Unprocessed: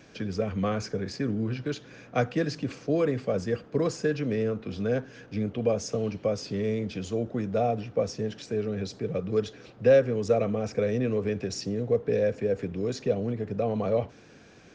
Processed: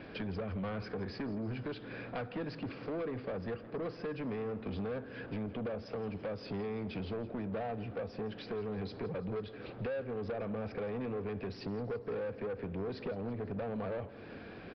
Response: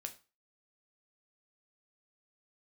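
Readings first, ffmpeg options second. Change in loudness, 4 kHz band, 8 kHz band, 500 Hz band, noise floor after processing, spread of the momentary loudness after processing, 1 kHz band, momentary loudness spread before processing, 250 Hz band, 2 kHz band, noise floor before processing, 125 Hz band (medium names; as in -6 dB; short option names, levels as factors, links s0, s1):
-11.0 dB, -10.0 dB, no reading, -12.0 dB, -49 dBFS, 3 LU, -8.5 dB, 7 LU, -9.0 dB, -7.5 dB, -52 dBFS, -10.0 dB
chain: -af "equalizer=f=140:t=o:w=0.46:g=-5,acompressor=threshold=0.0141:ratio=5,asoftclip=type=tanh:threshold=0.01,adynamicsmooth=sensitivity=6:basefreq=3300,aecho=1:1:167|334|501|668|835:0.133|0.0773|0.0449|0.026|0.0151,aresample=11025,aresample=44100,volume=2.11"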